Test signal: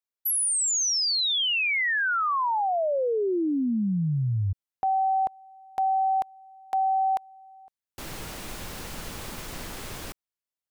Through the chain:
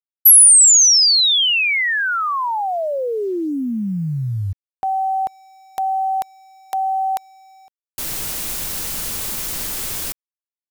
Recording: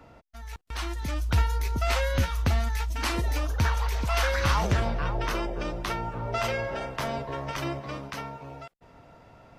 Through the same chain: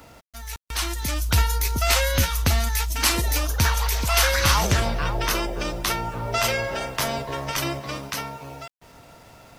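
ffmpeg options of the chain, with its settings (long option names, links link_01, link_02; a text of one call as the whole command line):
ffmpeg -i in.wav -af "crystalizer=i=3.5:c=0,acrusher=bits=8:mix=0:aa=0.5,volume=3dB" out.wav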